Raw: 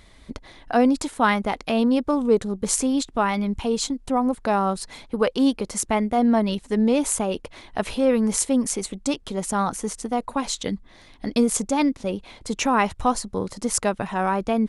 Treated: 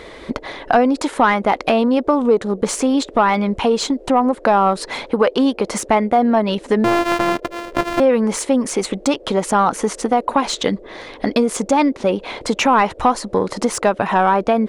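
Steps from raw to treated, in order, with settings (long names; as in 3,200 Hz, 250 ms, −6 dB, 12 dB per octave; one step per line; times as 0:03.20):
0:06.84–0:08.00: samples sorted by size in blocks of 128 samples
downward compressor 3 to 1, threshold −29 dBFS, peak gain reduction 12 dB
noise in a band 300–580 Hz −57 dBFS
mid-hump overdrive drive 19 dB, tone 1,400 Hz, clips at −6 dBFS
level +8 dB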